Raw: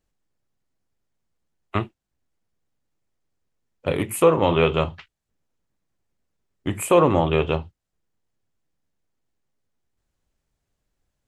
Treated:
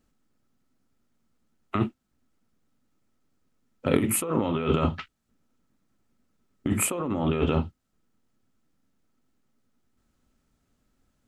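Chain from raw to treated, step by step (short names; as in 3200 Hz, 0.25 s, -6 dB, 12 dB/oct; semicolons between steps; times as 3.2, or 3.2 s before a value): small resonant body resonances 240/1300 Hz, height 12 dB, ringing for 40 ms; negative-ratio compressor -23 dBFS, ratio -1; gain -2 dB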